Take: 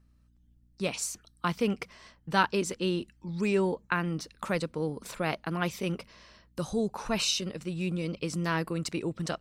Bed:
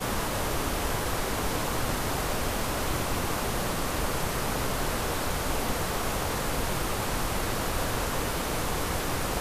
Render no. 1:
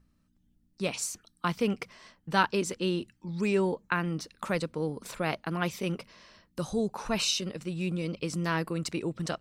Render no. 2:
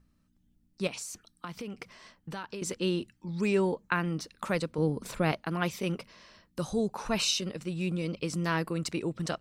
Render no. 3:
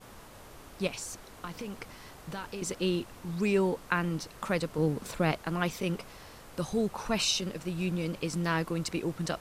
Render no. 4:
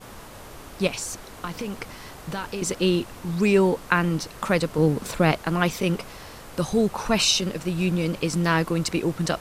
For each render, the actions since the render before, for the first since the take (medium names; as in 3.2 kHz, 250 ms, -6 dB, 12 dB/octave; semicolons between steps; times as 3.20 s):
de-hum 60 Hz, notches 2
0.87–2.62 s: compression, threshold -36 dBFS; 4.78–5.32 s: bass shelf 350 Hz +7.5 dB
add bed -21 dB
trim +8 dB